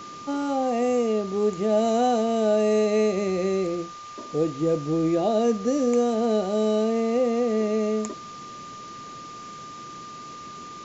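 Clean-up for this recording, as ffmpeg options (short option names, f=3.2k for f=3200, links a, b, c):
-af "bandreject=f=1.2k:w=30,afwtdn=0.0063"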